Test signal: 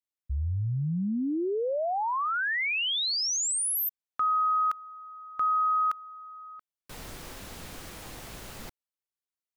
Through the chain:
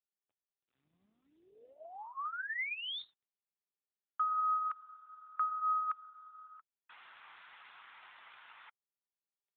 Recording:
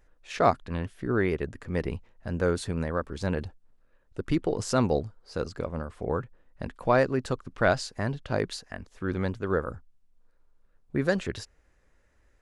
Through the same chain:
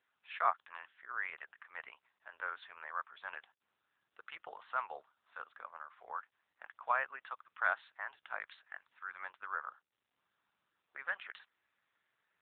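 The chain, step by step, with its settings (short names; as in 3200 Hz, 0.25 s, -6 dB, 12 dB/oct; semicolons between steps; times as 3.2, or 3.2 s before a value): HPF 1000 Hz 24 dB/oct; high shelf 2100 Hz -9.5 dB; AMR-NB 7.95 kbps 8000 Hz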